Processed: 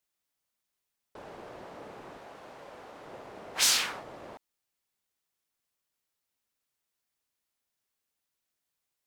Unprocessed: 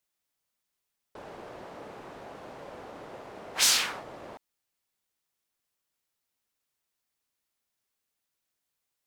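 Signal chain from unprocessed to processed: 2.17–3.06 low shelf 460 Hz -6.5 dB; gain -1.5 dB

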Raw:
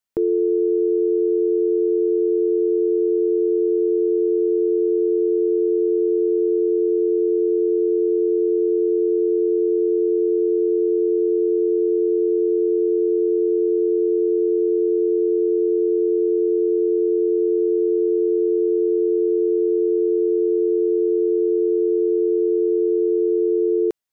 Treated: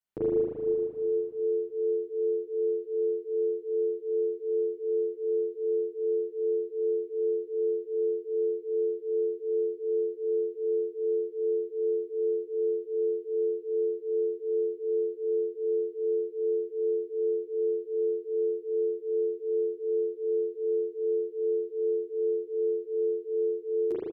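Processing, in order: bell 130 Hz +4.5 dB; spring tank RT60 2.6 s, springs 38 ms, chirp 50 ms, DRR -10 dB; endless flanger 8.8 ms +2.6 Hz; gain -6.5 dB

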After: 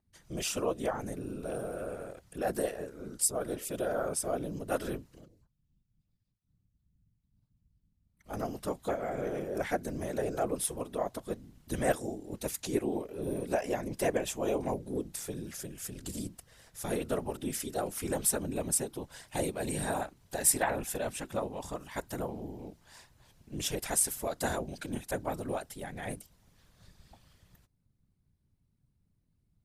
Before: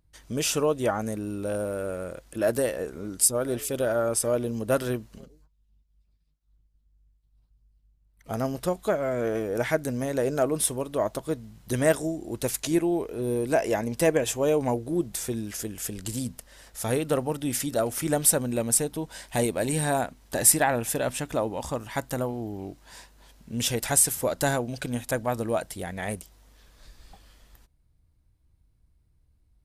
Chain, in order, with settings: whisperiser; gain -7.5 dB

